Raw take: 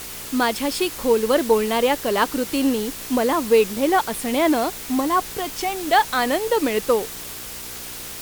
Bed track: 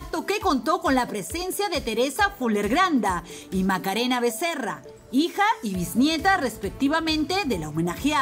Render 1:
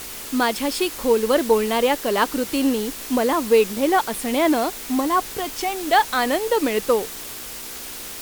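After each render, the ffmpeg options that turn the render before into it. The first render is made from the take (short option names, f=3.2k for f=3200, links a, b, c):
-af "bandreject=f=60:t=h:w=4,bandreject=f=120:t=h:w=4,bandreject=f=180:t=h:w=4"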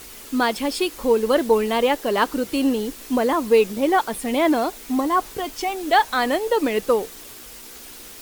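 -af "afftdn=nr=7:nf=-34"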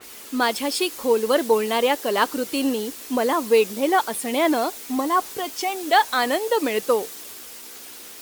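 -af "highpass=f=270:p=1,adynamicequalizer=threshold=0.0158:dfrequency=3700:dqfactor=0.7:tfrequency=3700:tqfactor=0.7:attack=5:release=100:ratio=0.375:range=2:mode=boostabove:tftype=highshelf"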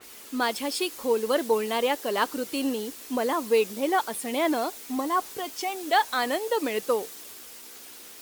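-af "volume=-5dB"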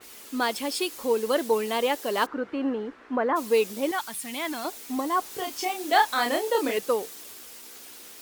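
-filter_complex "[0:a]asplit=3[a][b][c];[a]afade=t=out:st=2.25:d=0.02[d];[b]lowpass=f=1.5k:t=q:w=1.9,afade=t=in:st=2.25:d=0.02,afade=t=out:st=3.35:d=0.02[e];[c]afade=t=in:st=3.35:d=0.02[f];[d][e][f]amix=inputs=3:normalize=0,asettb=1/sr,asplit=3[g][h][i];[g]atrim=end=3.914[j];[h]atrim=start=3.91:end=4.65,asetpts=PTS-STARTPTS,afade=t=in:d=0.004:c=qsin,afade=t=out:st=0.736:d=0.004:c=qsin,equalizer=f=480:w=1:g=-15[k];[i]atrim=start=4.646[l];[j][k]acrossfade=d=0.004:c1=hsin:c2=qsin[m];[m][l]acrossfade=d=0.004:c1=qsin:c2=hsin,asettb=1/sr,asplit=3[n][o][p];[n]atrim=end=5.294[q];[o]atrim=start=5.29:end=6.78,asetpts=PTS-STARTPTS,afade=t=in:d=0.004:c=qsin,afade=t=out:st=1.486:d=0.004:c=qsin,asplit=2[r][s];[s]adelay=30,volume=-3.5dB[t];[r][t]amix=inputs=2:normalize=0,atrim=end_sample=65709[u];[p]atrim=start=6.776[v];[q][u]acrossfade=d=0.004:c1=hsin:c2=qsin[w];[w][v]acrossfade=d=0.004:c1=qsin:c2=hsin"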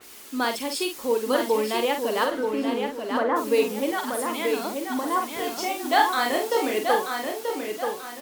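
-filter_complex "[0:a]asplit=2[a][b];[b]adelay=47,volume=-6.5dB[c];[a][c]amix=inputs=2:normalize=0,asplit=2[d][e];[e]adelay=933,lowpass=f=4.9k:p=1,volume=-5dB,asplit=2[f][g];[g]adelay=933,lowpass=f=4.9k:p=1,volume=0.37,asplit=2[h][i];[i]adelay=933,lowpass=f=4.9k:p=1,volume=0.37,asplit=2[j][k];[k]adelay=933,lowpass=f=4.9k:p=1,volume=0.37,asplit=2[l][m];[m]adelay=933,lowpass=f=4.9k:p=1,volume=0.37[n];[f][h][j][l][n]amix=inputs=5:normalize=0[o];[d][o]amix=inputs=2:normalize=0"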